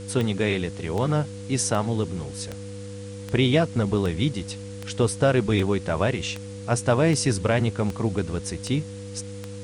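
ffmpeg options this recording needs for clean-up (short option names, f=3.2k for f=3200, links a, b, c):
-af "adeclick=t=4,bandreject=f=100.9:t=h:w=4,bandreject=f=201.8:t=h:w=4,bandreject=f=302.7:t=h:w=4,bandreject=f=490:w=30,afwtdn=0.0045"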